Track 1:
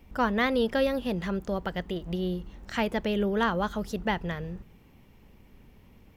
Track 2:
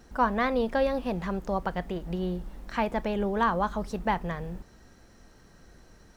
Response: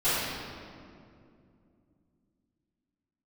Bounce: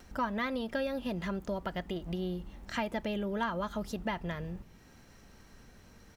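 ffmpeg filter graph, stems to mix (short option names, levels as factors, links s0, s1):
-filter_complex "[0:a]acompressor=threshold=0.0355:ratio=6,volume=0.75[s0];[1:a]acompressor=mode=upward:threshold=0.0178:ratio=2.5,highpass=f=740:p=1,volume=-1,adelay=2.8,volume=0.335[s1];[s0][s1]amix=inputs=2:normalize=0"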